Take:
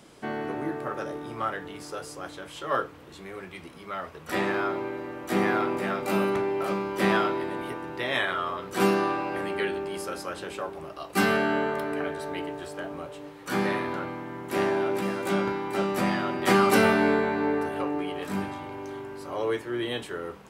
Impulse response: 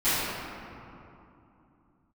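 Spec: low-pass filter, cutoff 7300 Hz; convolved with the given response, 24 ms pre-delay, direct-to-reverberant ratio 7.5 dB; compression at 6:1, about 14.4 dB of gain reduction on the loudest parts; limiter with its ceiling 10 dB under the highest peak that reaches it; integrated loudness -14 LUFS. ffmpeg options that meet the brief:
-filter_complex "[0:a]lowpass=7.3k,acompressor=threshold=-32dB:ratio=6,alimiter=level_in=6.5dB:limit=-24dB:level=0:latency=1,volume=-6.5dB,asplit=2[a][b];[1:a]atrim=start_sample=2205,adelay=24[c];[b][c]afir=irnorm=-1:irlink=0,volume=-23.5dB[d];[a][d]amix=inputs=2:normalize=0,volume=24.5dB"

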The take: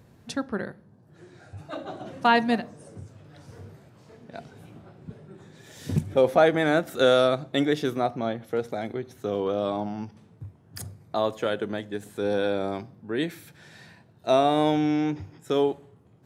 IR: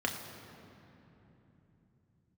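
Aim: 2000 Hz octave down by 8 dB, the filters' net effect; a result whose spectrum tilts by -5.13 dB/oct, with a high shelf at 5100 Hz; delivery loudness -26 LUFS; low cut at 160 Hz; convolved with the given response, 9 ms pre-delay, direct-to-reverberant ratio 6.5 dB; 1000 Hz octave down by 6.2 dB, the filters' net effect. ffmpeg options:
-filter_complex "[0:a]highpass=160,equalizer=f=1k:t=o:g=-8,equalizer=f=2k:t=o:g=-6.5,highshelf=f=5.1k:g=-6.5,asplit=2[a][b];[1:a]atrim=start_sample=2205,adelay=9[c];[b][c]afir=irnorm=-1:irlink=0,volume=-13.5dB[d];[a][d]amix=inputs=2:normalize=0,volume=2dB"

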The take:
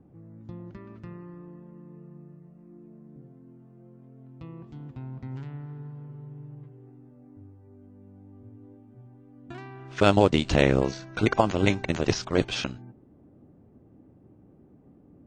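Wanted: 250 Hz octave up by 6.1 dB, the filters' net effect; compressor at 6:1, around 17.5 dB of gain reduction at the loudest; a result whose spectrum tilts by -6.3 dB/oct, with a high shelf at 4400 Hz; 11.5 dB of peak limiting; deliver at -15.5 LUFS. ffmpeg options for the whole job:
-af "equalizer=f=250:t=o:g=8,highshelf=f=4.4k:g=6.5,acompressor=threshold=-31dB:ratio=6,volume=26.5dB,alimiter=limit=-2dB:level=0:latency=1"

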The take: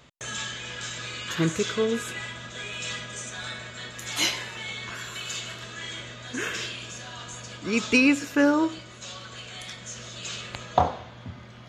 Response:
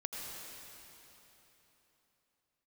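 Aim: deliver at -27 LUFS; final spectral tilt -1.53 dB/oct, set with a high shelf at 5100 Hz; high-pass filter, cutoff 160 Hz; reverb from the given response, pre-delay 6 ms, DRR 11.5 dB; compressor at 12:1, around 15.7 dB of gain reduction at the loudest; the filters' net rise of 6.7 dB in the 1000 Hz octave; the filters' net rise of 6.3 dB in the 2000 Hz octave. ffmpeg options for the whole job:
-filter_complex "[0:a]highpass=160,equalizer=f=1k:t=o:g=7.5,equalizer=f=2k:t=o:g=5.5,highshelf=f=5.1k:g=4.5,acompressor=threshold=-25dB:ratio=12,asplit=2[a][b];[1:a]atrim=start_sample=2205,adelay=6[c];[b][c]afir=irnorm=-1:irlink=0,volume=-12.5dB[d];[a][d]amix=inputs=2:normalize=0,volume=3dB"

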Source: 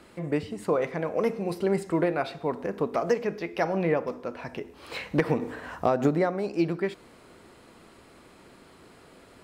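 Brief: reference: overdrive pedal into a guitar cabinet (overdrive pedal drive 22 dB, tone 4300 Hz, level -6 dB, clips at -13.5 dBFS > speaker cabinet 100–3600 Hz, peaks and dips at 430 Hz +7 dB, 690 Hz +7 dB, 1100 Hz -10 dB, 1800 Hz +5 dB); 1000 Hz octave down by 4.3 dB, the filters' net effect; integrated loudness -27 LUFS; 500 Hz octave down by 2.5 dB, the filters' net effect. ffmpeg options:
-filter_complex "[0:a]equalizer=f=500:t=o:g=-7.5,equalizer=f=1k:t=o:g=-7,asplit=2[a][b];[b]highpass=f=720:p=1,volume=22dB,asoftclip=type=tanh:threshold=-13.5dB[c];[a][c]amix=inputs=2:normalize=0,lowpass=f=4.3k:p=1,volume=-6dB,highpass=100,equalizer=f=430:t=q:w=4:g=7,equalizer=f=690:t=q:w=4:g=7,equalizer=f=1.1k:t=q:w=4:g=-10,equalizer=f=1.8k:t=q:w=4:g=5,lowpass=f=3.6k:w=0.5412,lowpass=f=3.6k:w=1.3066,volume=-3.5dB"

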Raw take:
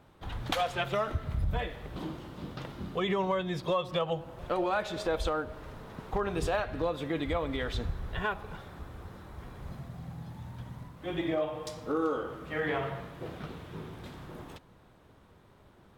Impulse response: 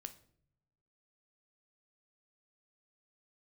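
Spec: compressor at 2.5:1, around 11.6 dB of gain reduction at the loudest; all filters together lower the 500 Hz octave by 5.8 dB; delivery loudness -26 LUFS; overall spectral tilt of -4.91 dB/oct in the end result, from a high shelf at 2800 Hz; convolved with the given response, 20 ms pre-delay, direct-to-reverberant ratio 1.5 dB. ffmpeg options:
-filter_complex "[0:a]equalizer=f=500:t=o:g=-7,highshelf=f=2.8k:g=-5,acompressor=threshold=-45dB:ratio=2.5,asplit=2[a][b];[1:a]atrim=start_sample=2205,adelay=20[c];[b][c]afir=irnorm=-1:irlink=0,volume=3.5dB[d];[a][d]amix=inputs=2:normalize=0,volume=18dB"

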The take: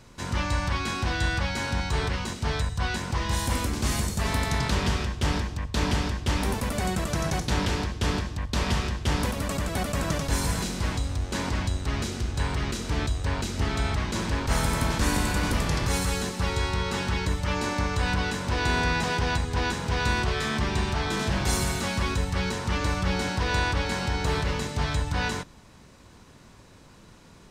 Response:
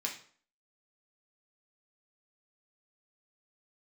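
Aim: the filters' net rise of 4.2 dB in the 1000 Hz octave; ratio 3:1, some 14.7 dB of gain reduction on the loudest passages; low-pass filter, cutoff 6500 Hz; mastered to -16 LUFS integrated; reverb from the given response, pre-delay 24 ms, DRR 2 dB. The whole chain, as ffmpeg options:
-filter_complex "[0:a]lowpass=6.5k,equalizer=f=1k:t=o:g=5,acompressor=threshold=-41dB:ratio=3,asplit=2[a][b];[1:a]atrim=start_sample=2205,adelay=24[c];[b][c]afir=irnorm=-1:irlink=0,volume=-4.5dB[d];[a][d]amix=inputs=2:normalize=0,volume=22.5dB"

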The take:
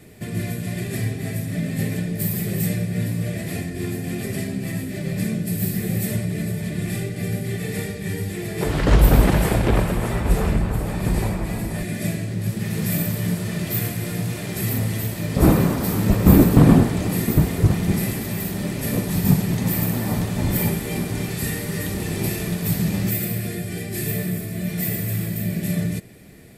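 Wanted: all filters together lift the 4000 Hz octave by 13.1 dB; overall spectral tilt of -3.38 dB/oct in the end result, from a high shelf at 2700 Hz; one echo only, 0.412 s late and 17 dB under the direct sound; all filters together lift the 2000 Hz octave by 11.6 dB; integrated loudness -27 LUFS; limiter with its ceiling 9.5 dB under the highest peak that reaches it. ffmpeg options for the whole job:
-af "equalizer=f=2k:t=o:g=8.5,highshelf=f=2.7k:g=7.5,equalizer=f=4k:t=o:g=7.5,alimiter=limit=-7.5dB:level=0:latency=1,aecho=1:1:412:0.141,volume=-7dB"

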